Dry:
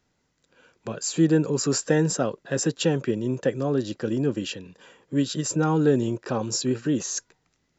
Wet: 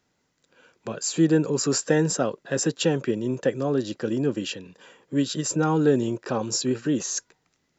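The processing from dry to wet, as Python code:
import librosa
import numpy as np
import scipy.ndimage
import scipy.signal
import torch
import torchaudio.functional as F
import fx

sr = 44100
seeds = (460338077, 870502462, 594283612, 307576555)

y = fx.low_shelf(x, sr, hz=84.0, db=-10.5)
y = y * 10.0 ** (1.0 / 20.0)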